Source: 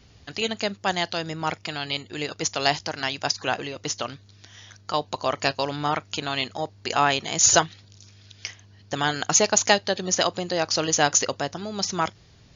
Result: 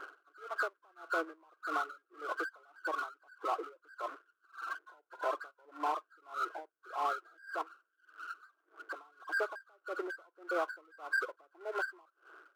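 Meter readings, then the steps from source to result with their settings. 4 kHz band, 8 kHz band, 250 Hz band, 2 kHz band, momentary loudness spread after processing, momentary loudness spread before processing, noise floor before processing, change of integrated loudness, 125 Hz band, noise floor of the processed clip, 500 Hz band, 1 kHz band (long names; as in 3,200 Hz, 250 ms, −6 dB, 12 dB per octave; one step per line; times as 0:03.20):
−28.5 dB, can't be measured, −19.0 dB, −9.0 dB, 14 LU, 13 LU, −53 dBFS, −15.0 dB, below −40 dB, −82 dBFS, −14.0 dB, −11.5 dB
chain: hearing-aid frequency compression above 1,000 Hz 4 to 1
gate on every frequency bin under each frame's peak −30 dB strong
reverb reduction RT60 0.99 s
downward compressor 6 to 1, threshold −29 dBFS, peak gain reduction 20.5 dB
brickwall limiter −28.5 dBFS, peak gain reduction 11 dB
power curve on the samples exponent 0.7
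linear-phase brick-wall high-pass 300 Hz
tremolo with a sine in dB 1.7 Hz, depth 32 dB
level +4 dB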